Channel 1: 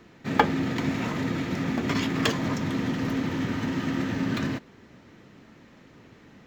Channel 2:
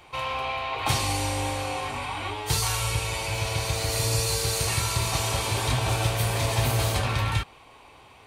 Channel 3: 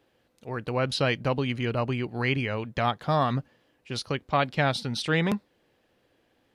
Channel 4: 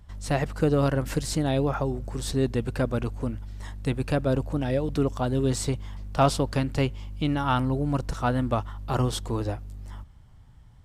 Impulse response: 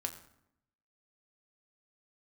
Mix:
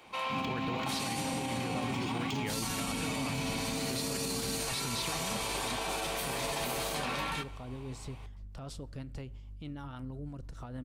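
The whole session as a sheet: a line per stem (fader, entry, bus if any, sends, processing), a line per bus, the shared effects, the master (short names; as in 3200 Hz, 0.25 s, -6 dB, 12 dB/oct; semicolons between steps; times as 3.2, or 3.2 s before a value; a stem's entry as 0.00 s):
-6.0 dB, 0.05 s, no send, Chebyshev band-stop 290–2900 Hz, order 3
-7.5 dB, 0.00 s, send -5.5 dB, steep high-pass 150 Hz 96 dB/oct
-4.5 dB, 0.00 s, no send, negative-ratio compressor -32 dBFS
-14.5 dB, 2.40 s, send -12.5 dB, low shelf 94 Hz +8 dB; limiter -20 dBFS, peak gain reduction 11 dB; rotary speaker horn 6.3 Hz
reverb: on, RT60 0.75 s, pre-delay 6 ms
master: limiter -25 dBFS, peak gain reduction 9 dB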